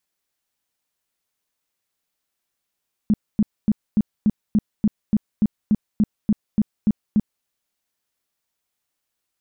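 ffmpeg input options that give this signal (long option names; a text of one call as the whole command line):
ffmpeg -f lavfi -i "aevalsrc='0.237*sin(2*PI*212*mod(t,0.29))*lt(mod(t,0.29),8/212)':duration=4.35:sample_rate=44100" out.wav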